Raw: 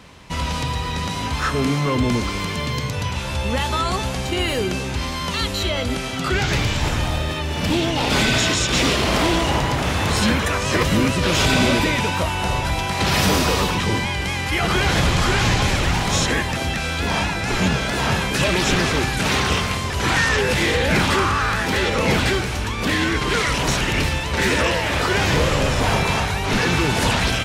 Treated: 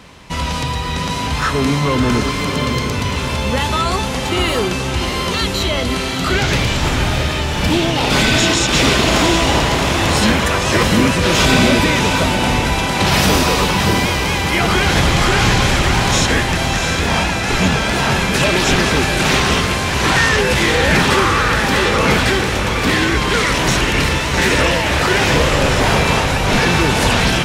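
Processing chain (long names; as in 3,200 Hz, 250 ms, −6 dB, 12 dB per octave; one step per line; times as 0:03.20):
parametric band 92 Hz −2.5 dB
feedback delay with all-pass diffusion 675 ms, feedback 48%, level −6 dB
level +4 dB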